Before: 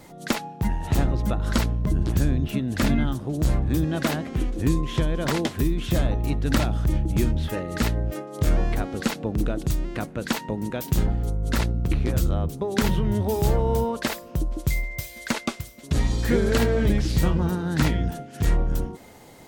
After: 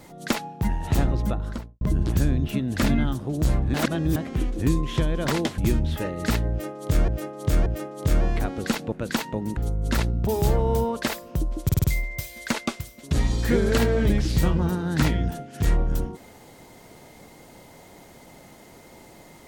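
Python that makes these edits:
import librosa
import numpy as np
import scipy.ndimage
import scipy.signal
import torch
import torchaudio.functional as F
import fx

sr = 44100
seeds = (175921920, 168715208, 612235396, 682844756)

y = fx.studio_fade_out(x, sr, start_s=1.17, length_s=0.64)
y = fx.edit(y, sr, fx.reverse_span(start_s=3.74, length_s=0.42),
    fx.cut(start_s=5.58, length_s=1.52),
    fx.repeat(start_s=8.02, length_s=0.58, count=3),
    fx.cut(start_s=9.28, length_s=0.8),
    fx.cut(start_s=10.73, length_s=0.45),
    fx.cut(start_s=11.88, length_s=1.39),
    fx.stutter(start_s=14.64, slice_s=0.05, count=5), tone=tone)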